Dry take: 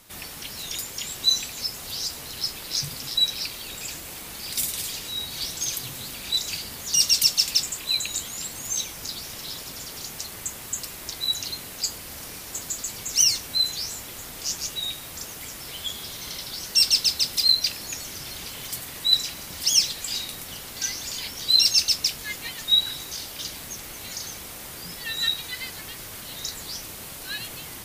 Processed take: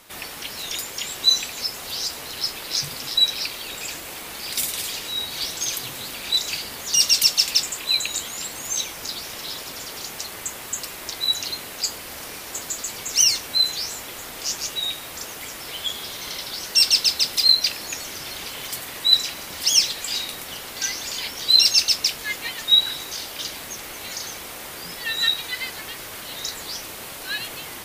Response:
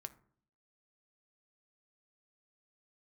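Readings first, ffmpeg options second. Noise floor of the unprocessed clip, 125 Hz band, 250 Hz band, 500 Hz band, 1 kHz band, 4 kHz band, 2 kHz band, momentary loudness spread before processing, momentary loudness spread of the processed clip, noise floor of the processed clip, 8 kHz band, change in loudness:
−39 dBFS, −2.0 dB, +1.5 dB, +5.5 dB, +6.0 dB, +3.0 dB, +5.5 dB, 16 LU, 16 LU, −37 dBFS, +1.5 dB, +3.0 dB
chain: -af "bass=frequency=250:gain=-9,treble=frequency=4000:gain=-5,volume=6dB"

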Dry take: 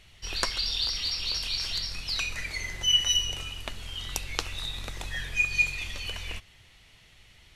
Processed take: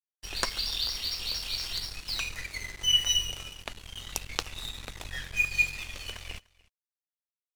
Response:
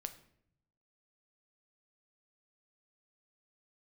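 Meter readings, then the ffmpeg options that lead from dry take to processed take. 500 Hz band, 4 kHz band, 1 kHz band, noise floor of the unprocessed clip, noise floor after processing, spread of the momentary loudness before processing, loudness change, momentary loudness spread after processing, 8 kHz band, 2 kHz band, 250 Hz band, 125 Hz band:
−1.5 dB, −2.0 dB, −1.5 dB, −57 dBFS, below −85 dBFS, 14 LU, −1.5 dB, 17 LU, −1.0 dB, −2.0 dB, −2.0 dB, −4.0 dB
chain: -filter_complex "[0:a]aeval=exprs='sgn(val(0))*max(abs(val(0))-0.0112,0)':channel_layout=same,asplit=2[link_01][link_02];[link_02]aecho=0:1:297:0.0631[link_03];[link_01][link_03]amix=inputs=2:normalize=0"

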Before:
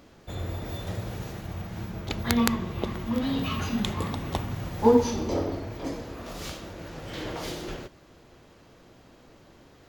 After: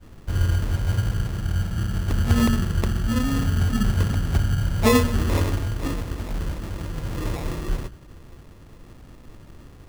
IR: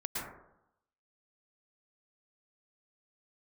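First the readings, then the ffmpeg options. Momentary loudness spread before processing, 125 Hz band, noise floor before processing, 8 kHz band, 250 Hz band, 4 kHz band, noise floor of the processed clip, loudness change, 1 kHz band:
14 LU, +11.5 dB, −55 dBFS, +4.0 dB, +3.0 dB, +2.0 dB, −46 dBFS, +5.5 dB, +1.0 dB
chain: -af "lowpass=frequency=1100:width=0.5412,lowpass=frequency=1100:width=1.3066,aemphasis=mode=reproduction:type=riaa,bandreject=frequency=60:width_type=h:width=6,bandreject=frequency=120:width_type=h:width=6,bandreject=frequency=180:width_type=h:width=6,bandreject=frequency=240:width_type=h:width=6,adynamicequalizer=threshold=0.0251:dfrequency=320:dqfactor=0.93:tfrequency=320:tqfactor=0.93:attack=5:release=100:ratio=0.375:range=2:mode=cutabove:tftype=bell,acrusher=samples=29:mix=1:aa=0.000001,asoftclip=type=tanh:threshold=-5.5dB"

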